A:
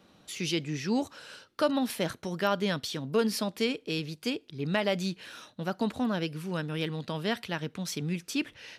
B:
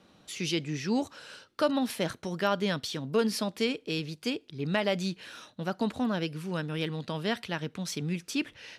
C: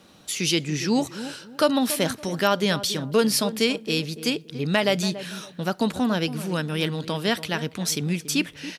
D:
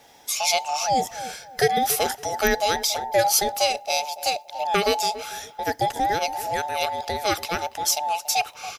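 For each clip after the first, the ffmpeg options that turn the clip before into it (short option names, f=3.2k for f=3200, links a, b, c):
-af "lowpass=12k"
-filter_complex "[0:a]crystalizer=i=1.5:c=0,asplit=2[a][b];[b]adelay=283,lowpass=f=910:p=1,volume=-12dB,asplit=2[c][d];[d]adelay=283,lowpass=f=910:p=1,volume=0.31,asplit=2[e][f];[f]adelay=283,lowpass=f=910:p=1,volume=0.31[g];[a][c][e][g]amix=inputs=4:normalize=0,volume=6dB"
-af "afftfilt=real='real(if(between(b,1,1008),(2*floor((b-1)/48)+1)*48-b,b),0)':imag='imag(if(between(b,1,1008),(2*floor((b-1)/48)+1)*48-b,b),0)*if(between(b,1,1008),-1,1)':win_size=2048:overlap=0.75,aexciter=amount=2.3:drive=1.1:freq=5.4k"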